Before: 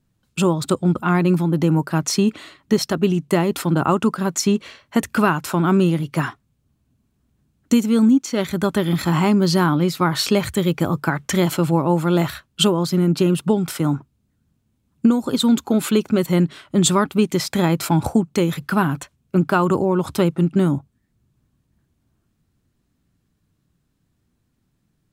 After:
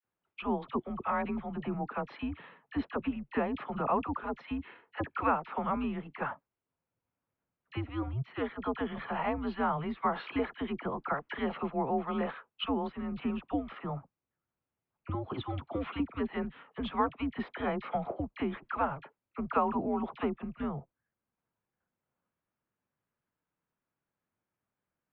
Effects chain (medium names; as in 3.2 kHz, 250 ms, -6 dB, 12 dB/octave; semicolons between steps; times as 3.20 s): three-band isolator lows -16 dB, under 380 Hz, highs -22 dB, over 2.7 kHz; mistuned SSB -140 Hz 240–3600 Hz; phase dispersion lows, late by 42 ms, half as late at 1.2 kHz; trim -8 dB